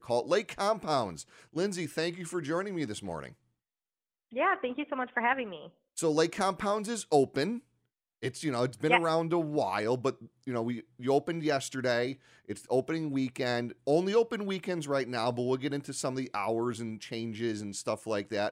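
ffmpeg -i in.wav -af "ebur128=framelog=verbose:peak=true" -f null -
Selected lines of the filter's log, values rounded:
Integrated loudness:
  I:         -31.4 LUFS
  Threshold: -41.7 LUFS
Loudness range:
  LRA:         4.2 LU
  Threshold: -51.8 LUFS
  LRA low:   -34.4 LUFS
  LRA high:  -30.2 LUFS
True peak:
  Peak:       -8.3 dBFS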